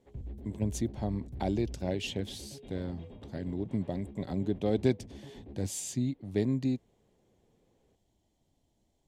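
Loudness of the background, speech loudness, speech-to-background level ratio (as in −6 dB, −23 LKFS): −47.0 LKFS, −34.0 LKFS, 13.0 dB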